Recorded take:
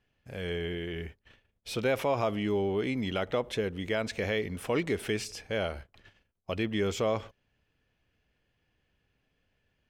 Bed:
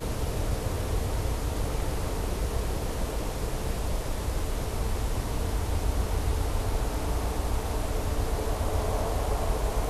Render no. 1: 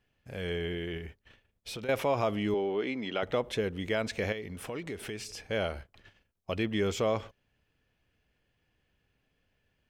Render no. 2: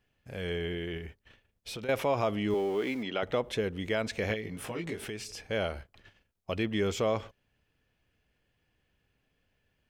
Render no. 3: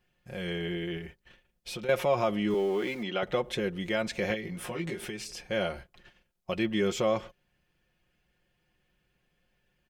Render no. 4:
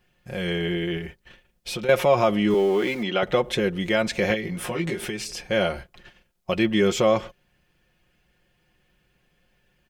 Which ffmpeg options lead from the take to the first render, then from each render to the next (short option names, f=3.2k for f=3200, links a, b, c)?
-filter_complex "[0:a]asettb=1/sr,asplit=3[a][b][c];[a]atrim=end=0.974[d];[b]atrim=start=0.97:end=1.89,asetpts=PTS-STARTPTS,afade=t=in:d=0.004:c=qsin,afade=t=out:st=0.916:d=0.004:c=qsin,acompressor=threshold=-36dB:ratio=6:attack=3.2:release=140:knee=1:detection=peak[e];[c]atrim=start=1.886[f];[d][e]acrossfade=d=0.004:c1=hsin:c2=qsin[g];[g][f]acrossfade=d=0.004:c1=qsin:c2=hsin,asettb=1/sr,asplit=3[h][i][j];[h]atrim=end=2.544[k];[i]atrim=start=2.54:end=3.23,asetpts=PTS-STARTPTS,afade=t=in:d=0.004:c=qsin,afade=t=out:st=0.686:d=0.004:c=qsin,highpass=270,lowpass=4.6k[l];[j]atrim=start=3.226[m];[k][l]acrossfade=d=0.004:c1=hsin:c2=qsin[n];[n][m]acrossfade=d=0.004:c1=qsin:c2=hsin,asettb=1/sr,asplit=3[o][p][q];[o]atrim=end=4.324[r];[p]atrim=start=4.32:end=5.44,asetpts=PTS-STARTPTS,afade=t=in:d=0.004:c=qsin,afade=t=out:st=1.116:d=0.004:c=qsin,acompressor=threshold=-38dB:ratio=2.5:attack=3.2:release=140:knee=1:detection=peak[s];[q]atrim=start=5.436[t];[r][s]acrossfade=d=0.004:c1=hsin:c2=qsin[u];[u][t]acrossfade=d=0.004:c1=qsin:c2=hsin"
-filter_complex "[0:a]asettb=1/sr,asplit=3[a][b][c];[a]atrim=end=2.504[d];[b]atrim=start=2.5:end=3.03,asetpts=PTS-STARTPTS,afade=t=in:d=0.004:c=qsin,afade=t=out:st=0.526:d=0.004:c=qsin,aeval=exprs='val(0)+0.5*0.00668*sgn(val(0))':c=same[e];[c]atrim=start=3.026[f];[d][e]acrossfade=d=0.004:c1=hsin:c2=qsin[g];[g][f]acrossfade=d=0.004:c1=qsin:c2=hsin,asettb=1/sr,asplit=3[h][i][j];[h]atrim=end=4.284[k];[i]atrim=start=4.28:end=5.05,asetpts=PTS-STARTPTS,afade=t=in:d=0.004:c=qsin,afade=t=out:st=0.766:d=0.004:c=qsin,asplit=2[l][m];[m]adelay=18,volume=-2dB[n];[l][n]amix=inputs=2:normalize=0,atrim=end_sample=33957[o];[j]atrim=start=5.046[p];[k][o]acrossfade=d=0.004:c1=hsin:c2=qsin[q];[q][p]acrossfade=d=0.004:c1=qsin:c2=hsin"
-af "aecho=1:1:5.6:0.65"
-af "volume=7.5dB"